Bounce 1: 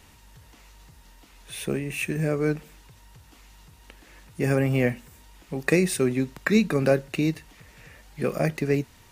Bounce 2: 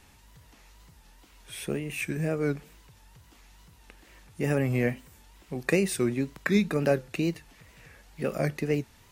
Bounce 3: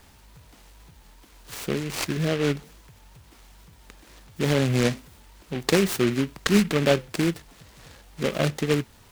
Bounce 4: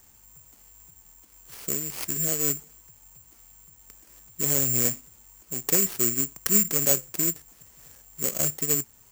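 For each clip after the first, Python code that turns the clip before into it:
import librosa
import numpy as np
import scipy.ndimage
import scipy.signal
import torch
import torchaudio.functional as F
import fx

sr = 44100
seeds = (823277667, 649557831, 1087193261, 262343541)

y1 = fx.wow_flutter(x, sr, seeds[0], rate_hz=2.1, depth_cents=110.0)
y1 = y1 * 10.0 ** (-3.5 / 20.0)
y2 = fx.noise_mod_delay(y1, sr, seeds[1], noise_hz=2000.0, depth_ms=0.11)
y2 = y2 * 10.0 ** (4.0 / 20.0)
y3 = (np.kron(scipy.signal.resample_poly(y2, 1, 6), np.eye(6)[0]) * 6)[:len(y2)]
y3 = y3 * 10.0 ** (-9.5 / 20.0)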